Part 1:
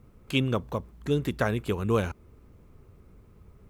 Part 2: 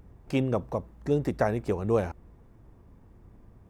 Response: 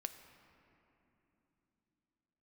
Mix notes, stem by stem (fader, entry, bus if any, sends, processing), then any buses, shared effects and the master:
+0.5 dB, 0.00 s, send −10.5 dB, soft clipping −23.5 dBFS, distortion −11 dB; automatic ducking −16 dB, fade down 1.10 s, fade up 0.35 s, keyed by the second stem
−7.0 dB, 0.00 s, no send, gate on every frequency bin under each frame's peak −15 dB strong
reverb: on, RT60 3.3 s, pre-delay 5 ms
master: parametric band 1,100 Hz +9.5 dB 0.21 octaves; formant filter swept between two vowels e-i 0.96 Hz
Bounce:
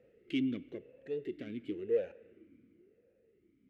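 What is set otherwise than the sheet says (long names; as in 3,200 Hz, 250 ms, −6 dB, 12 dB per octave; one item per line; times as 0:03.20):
stem 1 +0.5 dB → +7.0 dB
master: missing parametric band 1,100 Hz +9.5 dB 0.21 octaves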